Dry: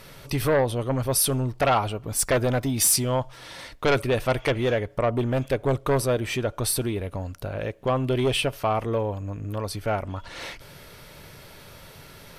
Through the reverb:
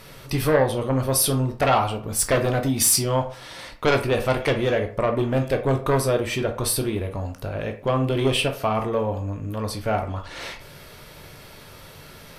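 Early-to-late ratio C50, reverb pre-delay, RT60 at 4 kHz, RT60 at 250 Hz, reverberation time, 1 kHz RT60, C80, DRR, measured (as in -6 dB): 10.5 dB, 12 ms, 0.25 s, 0.40 s, 0.40 s, 0.45 s, 16.5 dB, 4.5 dB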